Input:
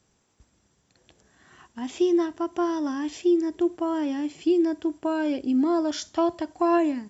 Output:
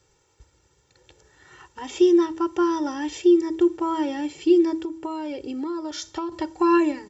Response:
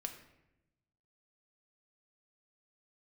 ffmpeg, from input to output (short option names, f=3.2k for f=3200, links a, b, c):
-filter_complex "[0:a]aecho=1:1:2.2:0.99,bandreject=f=81.12:t=h:w=4,bandreject=f=162.24:t=h:w=4,bandreject=f=243.36:t=h:w=4,bandreject=f=324.48:t=h:w=4,asettb=1/sr,asplit=3[a][b][c];[a]atrim=end=4.834[d];[b]atrim=start=4.83:end=6.32,asetpts=PTS-STARTPTS,afade=t=in:d=0.004:c=qsin,afade=t=out:st=1.486:d=0.004:c=qsin,acompressor=threshold=-30dB:ratio=4[e];[c]atrim=start=6.316[f];[d][e]acrossfade=d=0.004:c1=hsin:c2=qsin[g];[g][f]acrossfade=d=0.004:c1=qsin:c2=hsin,volume=1.5dB"